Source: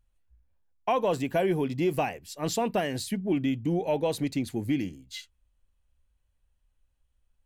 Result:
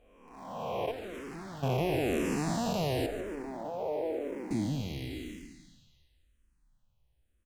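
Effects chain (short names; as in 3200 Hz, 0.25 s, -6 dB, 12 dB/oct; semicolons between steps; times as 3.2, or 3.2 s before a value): time blur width 0.886 s; 3.06–4.51 Chebyshev band-pass 480–1500 Hz, order 2; in parallel at -9 dB: sample gate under -46 dBFS; 0.91–1.63 on the sum: tube stage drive 44 dB, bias 0.7; on a send: frequency-shifting echo 0.144 s, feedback 51%, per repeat -77 Hz, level -13 dB; on the sum: endless phaser -0.96 Hz; gain +5 dB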